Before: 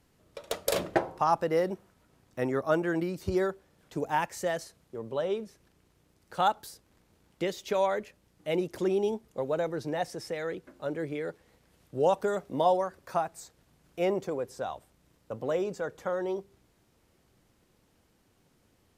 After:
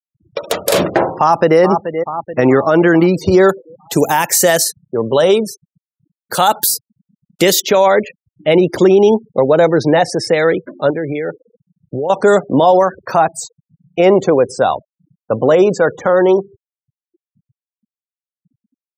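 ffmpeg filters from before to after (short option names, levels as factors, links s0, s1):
-filter_complex "[0:a]asplit=2[s0][s1];[s1]afade=t=in:st=1.17:d=0.01,afade=t=out:st=1.6:d=0.01,aecho=0:1:430|860|1290|1720|2150|2580:0.211349|0.116242|0.063933|0.0351632|0.0193397|0.0106369[s2];[s0][s2]amix=inputs=2:normalize=0,asettb=1/sr,asplit=3[s3][s4][s5];[s3]atrim=end=3.494[s6];[s4]atrim=start=3.49:end=7.6,asetpts=PTS-STARTPTS,afade=t=in:d=0.004:c=qsin,afade=t=out:st=4.106:d=0.004:c=qsin,aemphasis=mode=production:type=75kf[s7];[s5]atrim=start=7.596[s8];[s6][s7]acrossfade=d=0.004:c1=hsin:c2=qsin[s9];[s9][s8]acrossfade=d=0.004:c1=qsin:c2=hsin,asettb=1/sr,asplit=3[s10][s11][s12];[s10]atrim=end=10.904[s13];[s11]atrim=start=10.9:end=12.1,asetpts=PTS-STARTPTS,afade=t=in:d=0.004:c=qsin,afade=t=out:st=1.196:d=0.004:c=qsin,acompressor=threshold=0.0141:ratio=12:attack=3.2:release=140:knee=1:detection=peak[s14];[s12]atrim=start=12.096[s15];[s13][s14]acrossfade=d=0.004:c1=hsin:c2=qsin[s16];[s16][s15]acrossfade=d=0.004:c1=qsin:c2=hsin,highpass=100,afftfilt=real='re*gte(hypot(re,im),0.00398)':imag='im*gte(hypot(re,im),0.00398)':win_size=1024:overlap=0.75,alimiter=level_in=13.3:limit=0.891:release=50:level=0:latency=1,volume=0.891"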